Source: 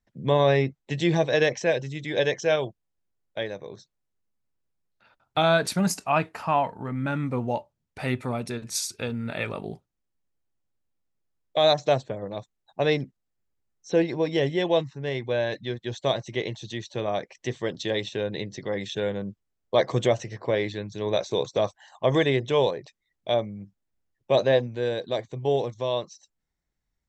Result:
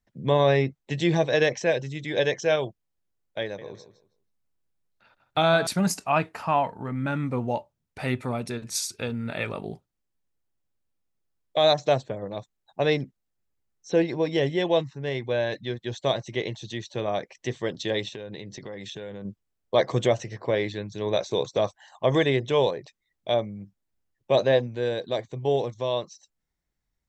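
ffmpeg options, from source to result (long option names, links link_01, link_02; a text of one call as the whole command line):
ffmpeg -i in.wav -filter_complex "[0:a]asettb=1/sr,asplit=3[link_01][link_02][link_03];[link_01]atrim=end=3.424[link_04];[link_02]atrim=start=3.42:end=5.67,asetpts=PTS-STARTPTS,afade=type=in:duration=0.004:curve=qsin,afade=type=out:start_time=2.246:duration=0.004:curve=qsin,asplit=2[link_05][link_06];[link_06]adelay=161,lowpass=frequency=4700:poles=1,volume=-12dB,asplit=2[link_07][link_08];[link_08]adelay=161,lowpass=frequency=4700:poles=1,volume=0.22,asplit=2[link_09][link_10];[link_10]adelay=161,lowpass=frequency=4700:poles=1,volume=0.22[link_11];[link_05][link_07][link_09][link_11]amix=inputs=4:normalize=0,atrim=end_sample=99225[link_12];[link_03]atrim=start=5.666[link_13];[link_04][link_12]acrossfade=duration=0.004:curve1=hsin:curve2=qsin[link_14];[link_14][link_13]acrossfade=duration=0.004:curve1=qsin:curve2=hsin,asettb=1/sr,asplit=3[link_15][link_16][link_17];[link_15]atrim=end=18.094[link_18];[link_16]atrim=start=18.09:end=19.25,asetpts=PTS-STARTPTS,afade=type=in:duration=0.004:curve=qsin,afade=type=out:start_time=1.156:duration=0.004:curve=qsin,acompressor=threshold=-34dB:ratio=6:attack=3.2:release=140:knee=1:detection=peak[link_19];[link_17]atrim=start=19.246[link_20];[link_18][link_19]acrossfade=duration=0.004:curve1=hsin:curve2=qsin[link_21];[link_21][link_20]acrossfade=duration=0.004:curve1=qsin:curve2=hsin" out.wav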